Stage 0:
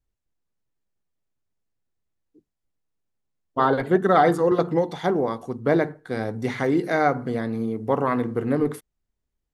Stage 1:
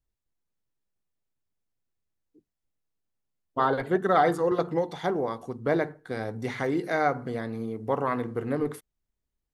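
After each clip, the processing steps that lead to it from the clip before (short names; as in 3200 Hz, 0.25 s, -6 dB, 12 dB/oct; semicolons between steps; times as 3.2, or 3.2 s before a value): dynamic EQ 220 Hz, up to -4 dB, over -31 dBFS, Q 0.87; gain -3.5 dB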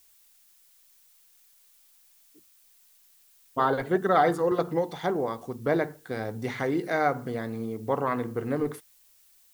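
added noise blue -60 dBFS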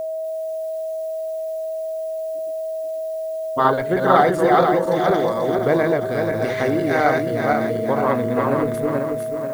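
regenerating reverse delay 0.243 s, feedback 62%, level -1 dB; whine 640 Hz -29 dBFS; ending taper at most 100 dB/s; gain +5.5 dB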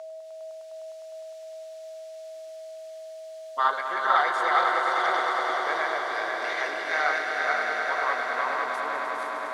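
Butterworth band-pass 2700 Hz, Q 0.51; on a send: swelling echo 0.102 s, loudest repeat 5, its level -8.5 dB; on the sum: gain -2 dB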